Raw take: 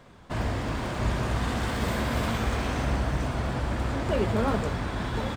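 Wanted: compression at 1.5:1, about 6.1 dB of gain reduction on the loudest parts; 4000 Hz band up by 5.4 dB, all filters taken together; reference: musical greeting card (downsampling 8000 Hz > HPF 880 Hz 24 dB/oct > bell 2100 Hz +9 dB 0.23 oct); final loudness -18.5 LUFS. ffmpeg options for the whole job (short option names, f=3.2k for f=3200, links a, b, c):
-af "equalizer=f=4k:t=o:g=6.5,acompressor=threshold=-39dB:ratio=1.5,aresample=8000,aresample=44100,highpass=f=880:w=0.5412,highpass=f=880:w=1.3066,equalizer=f=2.1k:t=o:w=0.23:g=9,volume=19.5dB"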